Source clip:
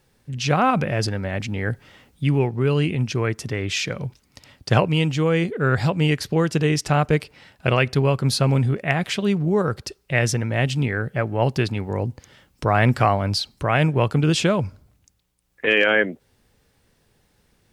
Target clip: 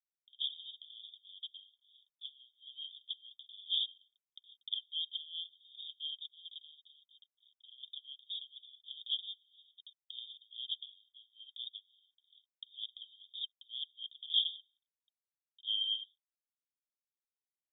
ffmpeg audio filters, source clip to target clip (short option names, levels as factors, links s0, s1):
-filter_complex "[0:a]asettb=1/sr,asplit=3[s0][s1][s2];[s0]atrim=end=6.594[s3];[s1]atrim=start=6.59:end=7.83,asetpts=PTS-STARTPTS,afade=t=in:d=0.004:c=qsin,afade=t=out:st=1.236:d=0.004:c=qsin,acompressor=threshold=0.00794:ratio=2[s4];[s2]atrim=start=7.826[s5];[s3][s4]acrossfade=d=0.004:c1=hsin:c2=qsin[s6];[s6][s5]acrossfade=d=0.004:c1=qsin:c2=hsin,aeval=exprs='sgn(val(0))*max(abs(val(0))-0.00376,0)':c=same,acompressor=mode=upward:threshold=0.0398:ratio=2.5,asuperpass=centerf=3400:order=20:qfactor=5.8,volume=1.12"